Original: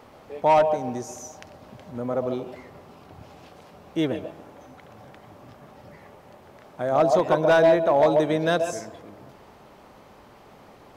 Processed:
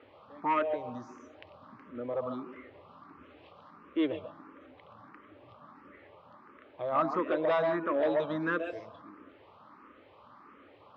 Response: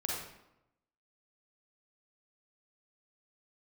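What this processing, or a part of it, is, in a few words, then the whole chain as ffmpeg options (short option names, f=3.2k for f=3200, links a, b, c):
barber-pole phaser into a guitar amplifier: -filter_complex "[0:a]asplit=2[a][b];[b]afreqshift=1.5[c];[a][c]amix=inputs=2:normalize=1,asoftclip=type=tanh:threshold=-15dB,highpass=100,equalizer=f=140:t=q:w=4:g=-10,equalizer=f=200:t=q:w=4:g=-5,equalizer=f=290:t=q:w=4:g=5,equalizer=f=410:t=q:w=4:g=-3,equalizer=f=730:t=q:w=4:g=-8,equalizer=f=1.2k:t=q:w=4:g=10,lowpass=f=3.5k:w=0.5412,lowpass=f=3.5k:w=1.3066,volume=-3.5dB"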